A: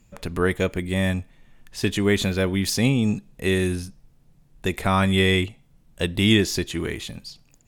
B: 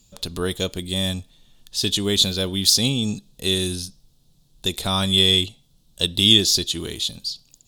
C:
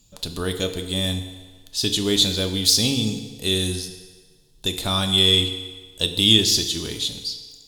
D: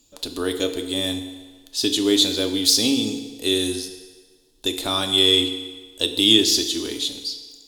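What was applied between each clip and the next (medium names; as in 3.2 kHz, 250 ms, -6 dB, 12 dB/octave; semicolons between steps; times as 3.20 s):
resonant high shelf 2.8 kHz +10 dB, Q 3; trim -3 dB
FDN reverb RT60 1.5 s, low-frequency decay 0.75×, high-frequency decay 0.85×, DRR 6 dB; trim -1 dB
resonant low shelf 220 Hz -8 dB, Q 3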